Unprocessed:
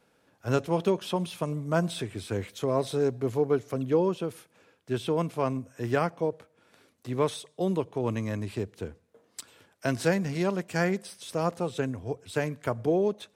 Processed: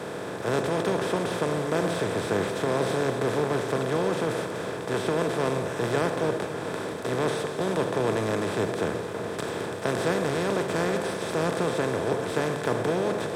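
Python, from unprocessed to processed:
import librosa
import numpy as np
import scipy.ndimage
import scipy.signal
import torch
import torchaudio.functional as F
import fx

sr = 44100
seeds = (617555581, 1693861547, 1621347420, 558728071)

y = fx.bin_compress(x, sr, power=0.2)
y = fx.echo_alternate(y, sr, ms=127, hz=840.0, feedback_pct=88, wet_db=-11.0)
y = fx.band_widen(y, sr, depth_pct=40)
y = y * 10.0 ** (-7.5 / 20.0)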